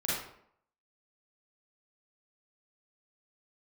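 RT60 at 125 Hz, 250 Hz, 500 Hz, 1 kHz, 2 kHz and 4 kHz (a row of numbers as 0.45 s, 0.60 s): 0.60 s, 0.70 s, 0.70 s, 0.65 s, 0.55 s, 0.45 s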